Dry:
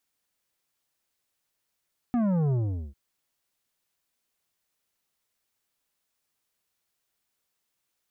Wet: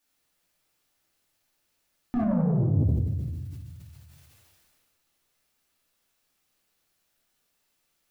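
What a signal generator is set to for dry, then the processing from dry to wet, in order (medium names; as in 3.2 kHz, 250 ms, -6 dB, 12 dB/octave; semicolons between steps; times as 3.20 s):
sub drop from 250 Hz, over 0.80 s, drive 10 dB, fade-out 0.42 s, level -23 dB
compression, threshold -32 dBFS; simulated room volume 420 m³, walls mixed, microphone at 2.5 m; decay stretcher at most 25 dB/s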